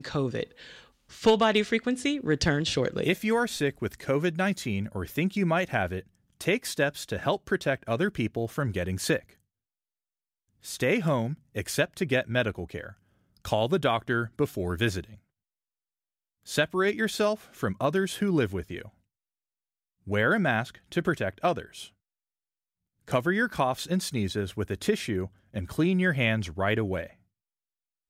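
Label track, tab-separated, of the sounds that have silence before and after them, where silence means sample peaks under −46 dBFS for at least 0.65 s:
10.640000	15.170000	sound
16.460000	18.890000	sound
20.070000	21.880000	sound
23.080000	27.110000	sound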